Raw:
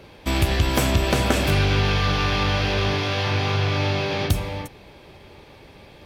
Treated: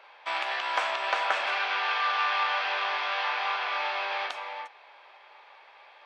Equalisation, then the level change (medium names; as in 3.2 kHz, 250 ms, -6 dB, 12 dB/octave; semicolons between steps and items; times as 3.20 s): high-pass 850 Hz 24 dB/octave; tape spacing loss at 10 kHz 35 dB; +5.5 dB